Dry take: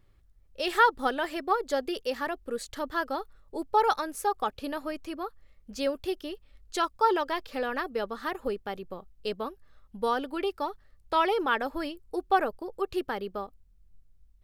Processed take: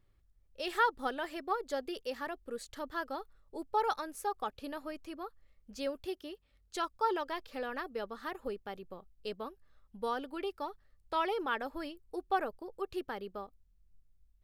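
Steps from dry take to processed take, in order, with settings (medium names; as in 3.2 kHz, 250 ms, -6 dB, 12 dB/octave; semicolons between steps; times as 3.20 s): 6.07–6.76 s: high-pass 50 Hz; trim -7.5 dB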